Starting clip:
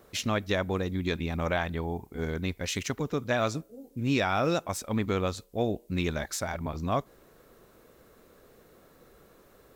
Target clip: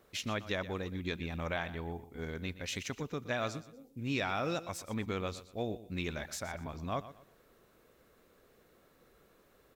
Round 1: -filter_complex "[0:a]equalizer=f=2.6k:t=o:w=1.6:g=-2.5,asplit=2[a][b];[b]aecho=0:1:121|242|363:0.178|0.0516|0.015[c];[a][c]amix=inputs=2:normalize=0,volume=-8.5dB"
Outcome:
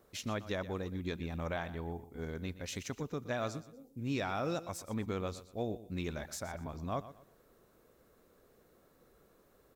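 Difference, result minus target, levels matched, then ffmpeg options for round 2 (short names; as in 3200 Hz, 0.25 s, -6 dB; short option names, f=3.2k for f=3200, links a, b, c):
2000 Hz band -3.5 dB
-filter_complex "[0:a]equalizer=f=2.6k:t=o:w=1.6:g=4,asplit=2[a][b];[b]aecho=0:1:121|242|363:0.178|0.0516|0.015[c];[a][c]amix=inputs=2:normalize=0,volume=-8.5dB"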